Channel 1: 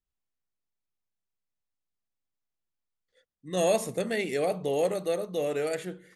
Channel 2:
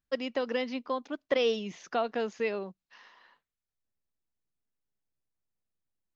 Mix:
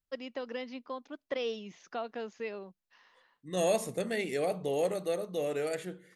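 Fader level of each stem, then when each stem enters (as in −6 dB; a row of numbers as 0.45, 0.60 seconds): −3.5, −7.5 decibels; 0.00, 0.00 seconds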